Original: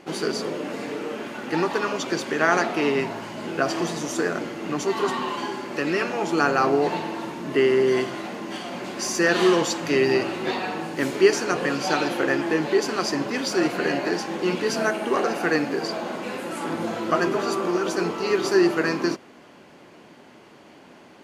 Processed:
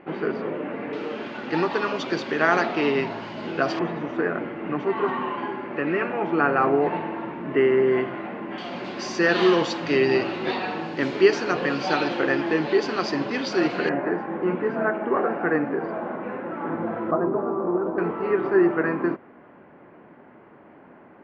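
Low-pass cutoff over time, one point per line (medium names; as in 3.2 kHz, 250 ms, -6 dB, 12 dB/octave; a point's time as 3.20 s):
low-pass 24 dB/octave
2.4 kHz
from 0.93 s 4.6 kHz
from 3.79 s 2.4 kHz
from 8.58 s 4.6 kHz
from 13.89 s 1.8 kHz
from 17.11 s 1.1 kHz
from 17.98 s 1.9 kHz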